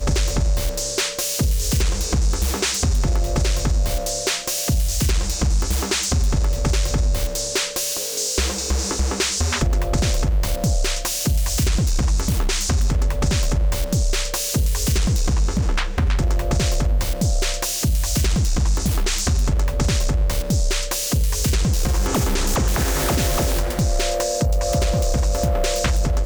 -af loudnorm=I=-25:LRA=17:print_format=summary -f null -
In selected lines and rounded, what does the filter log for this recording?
Input Integrated:    -21.2 LUFS
Input True Peak:      -9.4 dBTP
Input LRA:             0.7 LU
Input Threshold:     -31.2 LUFS